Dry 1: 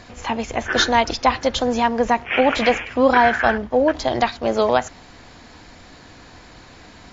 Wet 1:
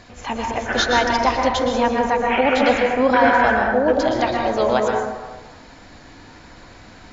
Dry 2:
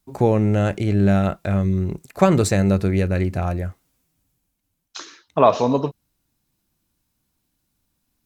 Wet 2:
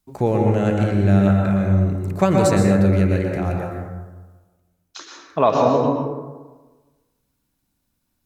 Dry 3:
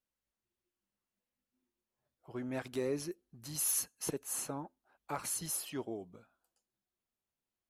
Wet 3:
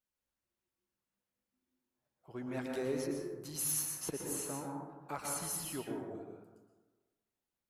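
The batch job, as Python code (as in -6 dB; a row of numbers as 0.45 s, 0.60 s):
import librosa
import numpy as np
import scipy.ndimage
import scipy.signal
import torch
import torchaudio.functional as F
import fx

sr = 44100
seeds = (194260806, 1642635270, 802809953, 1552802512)

y = fx.rev_plate(x, sr, seeds[0], rt60_s=1.3, hf_ratio=0.35, predelay_ms=105, drr_db=0.0)
y = y * librosa.db_to_amplitude(-2.5)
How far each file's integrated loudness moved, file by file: +0.5 LU, +1.5 LU, -1.0 LU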